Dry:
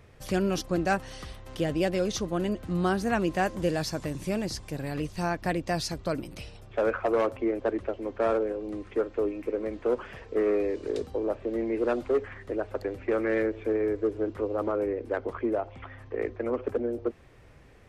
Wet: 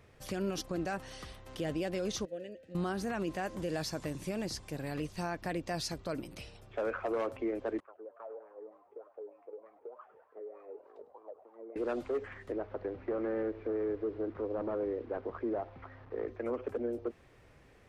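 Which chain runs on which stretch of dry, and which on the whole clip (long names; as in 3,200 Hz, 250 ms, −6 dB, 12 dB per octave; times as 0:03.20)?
0:02.25–0:02.75: formant filter e + bass and treble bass +11 dB, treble +14 dB
0:07.80–0:11.76: LFO wah 3.3 Hz 420–1,200 Hz, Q 8.4 + downward compressor 5 to 1, threshold −38 dBFS + echo with shifted repeats 102 ms, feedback 53%, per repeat +140 Hz, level −16 dB
0:12.52–0:16.28: linear delta modulator 32 kbit/s, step −43.5 dBFS + low-pass filter 1,500 Hz
whole clip: low-shelf EQ 130 Hz −5 dB; brickwall limiter −22.5 dBFS; level −4 dB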